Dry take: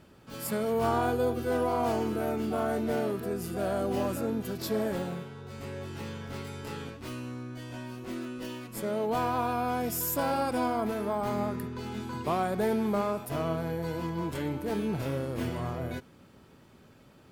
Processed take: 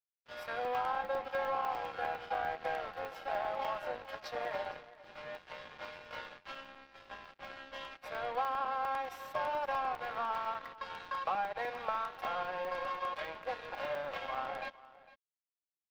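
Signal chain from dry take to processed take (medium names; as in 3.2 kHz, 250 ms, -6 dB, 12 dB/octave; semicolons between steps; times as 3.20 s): steep high-pass 560 Hz 36 dB/octave; comb 4 ms, depth 68%; compression 6:1, threshold -35 dBFS, peak gain reduction 12.5 dB; crossover distortion -46 dBFS; distance through air 340 m; delay 495 ms -19 dB; speed mistake 44.1 kHz file played as 48 kHz; crackling interface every 0.10 s, samples 64, zero; trim +7 dB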